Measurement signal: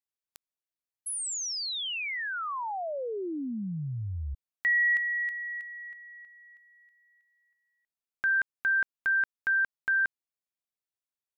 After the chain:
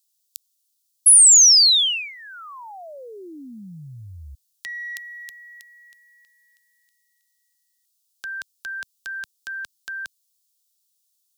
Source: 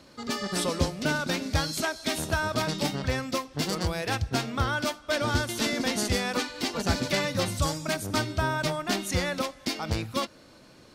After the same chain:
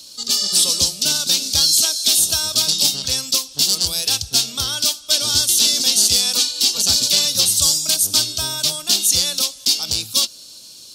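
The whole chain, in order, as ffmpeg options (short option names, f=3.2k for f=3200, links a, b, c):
-filter_complex "[0:a]acrossover=split=110|4100[a][b][c];[c]alimiter=level_in=5dB:limit=-24dB:level=0:latency=1:release=23,volume=-5dB[d];[a][b][d]amix=inputs=3:normalize=0,aexciter=amount=14.6:drive=7.3:freq=3.1k,volume=-5dB"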